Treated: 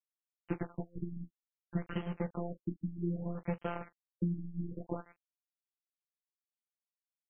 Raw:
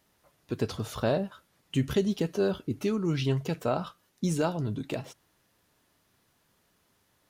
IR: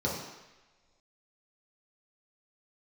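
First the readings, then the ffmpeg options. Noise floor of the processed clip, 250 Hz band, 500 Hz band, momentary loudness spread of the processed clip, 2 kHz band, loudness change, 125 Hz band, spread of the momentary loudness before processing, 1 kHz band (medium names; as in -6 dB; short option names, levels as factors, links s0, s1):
under -85 dBFS, -8.0 dB, -13.5 dB, 7 LU, -10.5 dB, -9.5 dB, -7.5 dB, 9 LU, -9.5 dB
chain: -filter_complex "[0:a]lowpass=5300,lowshelf=f=62:g=12,acompressor=threshold=0.0126:ratio=12,aeval=exprs='0.0473*(cos(1*acos(clip(val(0)/0.0473,-1,1)))-cos(1*PI/2))+0.00335*(cos(7*acos(clip(val(0)/0.0473,-1,1)))-cos(7*PI/2))+0.000299*(cos(8*acos(clip(val(0)/0.0473,-1,1)))-cos(8*PI/2))':c=same,afftfilt=real='hypot(re,im)*cos(PI*b)':imag='0':win_size=1024:overlap=0.75,aeval=exprs='val(0)*gte(abs(val(0)),0.00398)':c=same,asplit=2[s0][s1];[s1]aecho=0:1:16|40:0.335|0.133[s2];[s0][s2]amix=inputs=2:normalize=0,afftfilt=real='re*lt(b*sr/1024,310*pow(3300/310,0.5+0.5*sin(2*PI*0.61*pts/sr)))':imag='im*lt(b*sr/1024,310*pow(3300/310,0.5+0.5*sin(2*PI*0.61*pts/sr)))':win_size=1024:overlap=0.75,volume=3.16"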